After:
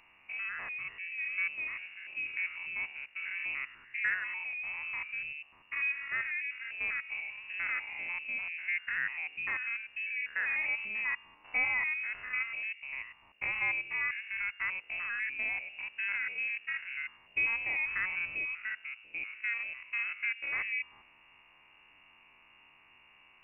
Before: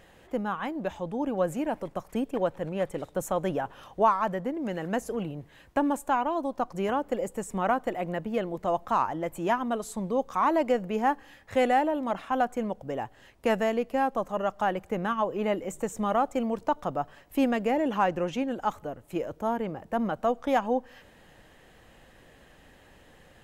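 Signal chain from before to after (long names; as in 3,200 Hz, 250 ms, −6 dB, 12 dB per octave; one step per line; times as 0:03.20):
spectrum averaged block by block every 100 ms
voice inversion scrambler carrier 2,800 Hz
level −5 dB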